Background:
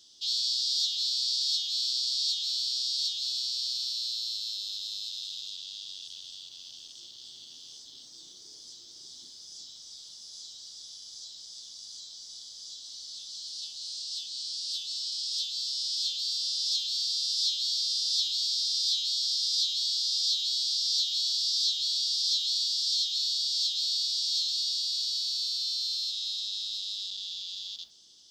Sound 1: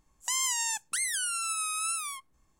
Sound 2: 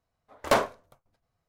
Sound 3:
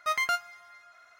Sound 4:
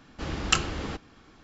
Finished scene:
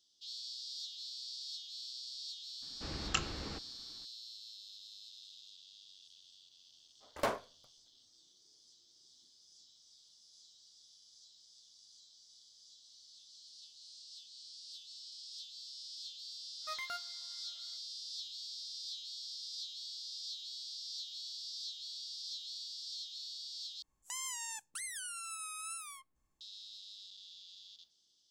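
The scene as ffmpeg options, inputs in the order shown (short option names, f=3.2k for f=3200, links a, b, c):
-filter_complex "[0:a]volume=-16.5dB,asplit=2[a][b];[a]atrim=end=23.824[c];[1:a]atrim=end=2.59,asetpts=PTS-STARTPTS,volume=-12dB[d];[b]atrim=start=26.406[e];[4:a]atrim=end=1.43,asetpts=PTS-STARTPTS,volume=-10.5dB,afade=t=in:d=0.004:c=hsin,afade=t=out:st=1.426:d=0.004:c=hsin,adelay=2620[f];[2:a]atrim=end=1.48,asetpts=PTS-STARTPTS,volume=-11.5dB,afade=t=in:d=0.004:c=hsin,afade=t=out:st=1.476:d=0.004:c=hsin,adelay=6720[g];[3:a]atrim=end=1.19,asetpts=PTS-STARTPTS,volume=-15dB,afade=t=in:d=0.05,afade=t=out:st=1.14:d=0.05,adelay=16610[h];[c][d]acrossfade=d=0.004:c1=hsin:c2=hsin[i];[i][e]acrossfade=d=0.004:c1=hsin:c2=hsin[j];[j][f][g][h]amix=inputs=4:normalize=0"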